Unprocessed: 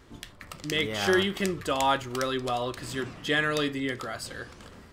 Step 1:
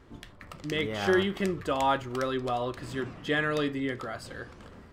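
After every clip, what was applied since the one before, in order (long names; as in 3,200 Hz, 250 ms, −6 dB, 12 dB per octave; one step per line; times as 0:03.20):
high-shelf EQ 2,900 Hz −10.5 dB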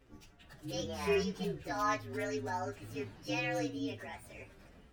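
partials spread apart or drawn together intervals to 121%
level −5.5 dB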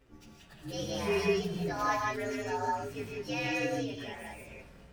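reverb whose tail is shaped and stops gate 210 ms rising, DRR −1 dB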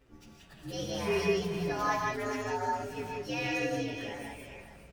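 single-tap delay 416 ms −11 dB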